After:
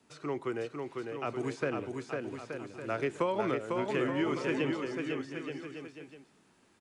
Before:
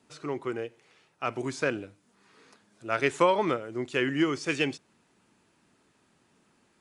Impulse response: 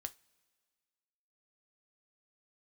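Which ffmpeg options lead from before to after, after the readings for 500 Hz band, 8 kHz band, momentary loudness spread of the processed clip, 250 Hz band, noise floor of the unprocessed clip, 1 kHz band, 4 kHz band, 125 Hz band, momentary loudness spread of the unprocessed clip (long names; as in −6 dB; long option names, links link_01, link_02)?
−3.0 dB, −8.5 dB, 11 LU, −2.0 dB, −68 dBFS, −5.5 dB, −7.5 dB, −1.5 dB, 15 LU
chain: -filter_complex "[0:a]acrossover=split=330|770|2900[link_01][link_02][link_03][link_04];[link_01]acompressor=threshold=-34dB:ratio=4[link_05];[link_02]acompressor=threshold=-31dB:ratio=4[link_06];[link_03]acompressor=threshold=-37dB:ratio=4[link_07];[link_04]acompressor=threshold=-53dB:ratio=4[link_08];[link_05][link_06][link_07][link_08]amix=inputs=4:normalize=0,asplit=2[link_09][link_10];[link_10]aecho=0:1:500|875|1156|1367|1525:0.631|0.398|0.251|0.158|0.1[link_11];[link_09][link_11]amix=inputs=2:normalize=0,volume=-1.5dB"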